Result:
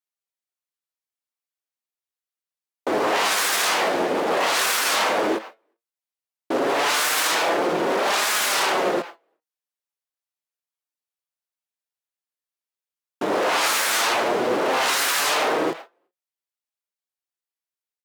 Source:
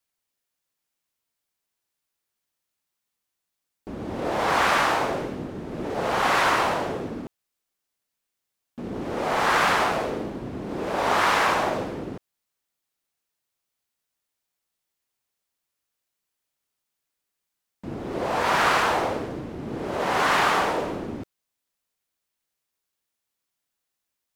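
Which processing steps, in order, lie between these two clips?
in parallel at -7 dB: sine folder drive 19 dB, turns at -8.5 dBFS; on the sum: speed mistake 33 rpm record played at 45 rpm; speakerphone echo 0.38 s, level -20 dB; gate -33 dBFS, range -28 dB; HPF 390 Hz 12 dB/oct; limiter -14 dBFS, peak gain reduction 8 dB; flange 0.12 Hz, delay 4.7 ms, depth 6.4 ms, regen +59%; ending taper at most 270 dB/s; gain +5 dB

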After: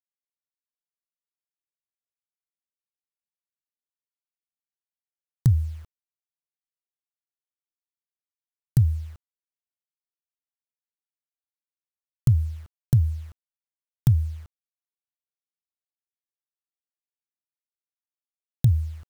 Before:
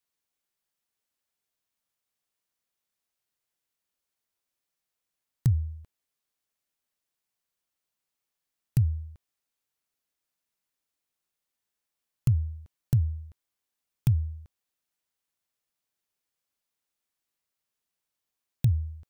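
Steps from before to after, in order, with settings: bell 2500 Hz -14 dB 0.27 oct; requantised 10-bit, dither none; gain +4.5 dB

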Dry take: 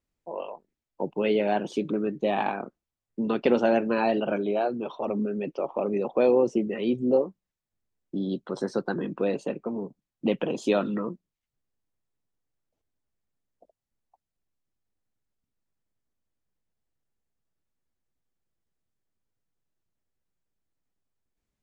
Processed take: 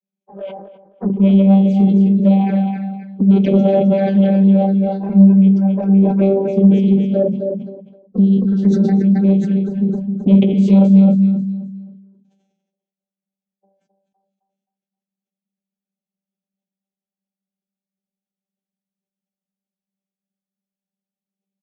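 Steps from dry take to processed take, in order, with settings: low shelf 140 Hz +6 dB; notch 440 Hz, Q 12; on a send at -1 dB: reverb, pre-delay 6 ms; on the sum: vocoder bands 16, saw 195 Hz; bell 1100 Hz -13.5 dB 0.47 oct; envelope flanger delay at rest 10.6 ms, full sweep at -21 dBFS; comb 3.9 ms, depth 52%; feedback echo 0.263 s, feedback 33%, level -5.5 dB; spectral noise reduction 10 dB; in parallel at -8.5 dB: sine folder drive 4 dB, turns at -9 dBFS; on the sum: sustainer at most 55 dB/s; gain +5 dB

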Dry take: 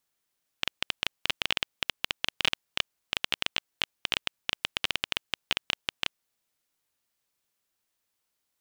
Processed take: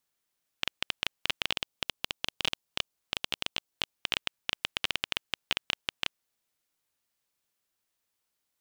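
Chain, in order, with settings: 1.49–3.91 dynamic EQ 1800 Hz, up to -6 dB, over -46 dBFS, Q 1.2; gain -1.5 dB

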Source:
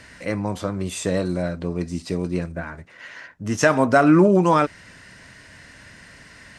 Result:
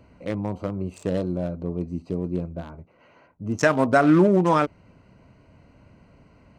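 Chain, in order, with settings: Wiener smoothing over 25 samples; gain -2 dB

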